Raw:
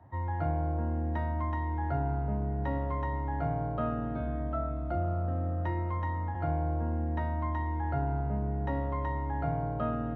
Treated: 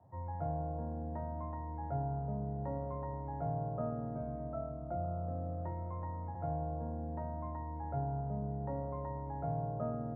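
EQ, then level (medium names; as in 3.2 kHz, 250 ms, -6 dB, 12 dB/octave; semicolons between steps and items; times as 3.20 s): Butterworth band-pass 290 Hz, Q 0.62; peaking EQ 300 Hz -14 dB 1.4 oct; hum notches 50/100/150/200/250/300/350 Hz; +4.5 dB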